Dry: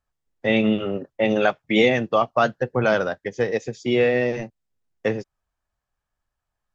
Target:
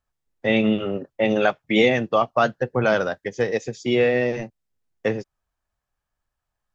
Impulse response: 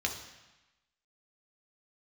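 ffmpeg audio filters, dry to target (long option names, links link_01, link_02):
-filter_complex "[0:a]asettb=1/sr,asplit=3[link_01][link_02][link_03];[link_01]atrim=end=2.964[link_04];[link_02]atrim=start=2.96:end=3.95,asetpts=PTS-STARTPTS,afade=type=in:duration=0.004:curve=qsin,afade=type=out:start_time=0.986:duration=0.004:curve=qsin,highshelf=frequency=4900:gain=4.5[link_05];[link_03]atrim=start=3.946[link_06];[link_04][link_05]acrossfade=duration=0.004:curve1=hsin:curve2=qsin[link_07];[link_07][link_06]acrossfade=duration=0.004:curve1=qsin:curve2=hsin"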